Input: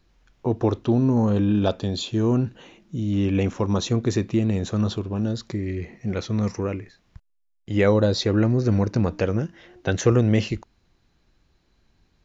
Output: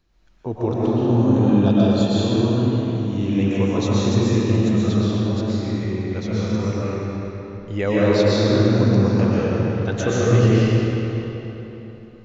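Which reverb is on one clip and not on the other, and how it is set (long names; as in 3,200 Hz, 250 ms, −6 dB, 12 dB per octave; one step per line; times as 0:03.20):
comb and all-pass reverb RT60 3.6 s, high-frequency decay 0.75×, pre-delay 85 ms, DRR −8 dB
level −4.5 dB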